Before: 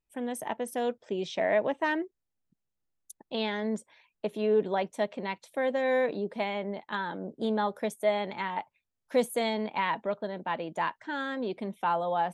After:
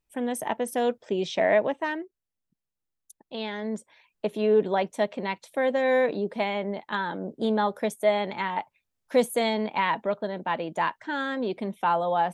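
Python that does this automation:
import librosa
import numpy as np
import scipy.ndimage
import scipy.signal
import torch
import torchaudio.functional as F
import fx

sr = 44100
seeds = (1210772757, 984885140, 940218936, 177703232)

y = fx.gain(x, sr, db=fx.line((1.52, 5.0), (2.03, -3.5), (3.24, -3.5), (4.26, 4.0)))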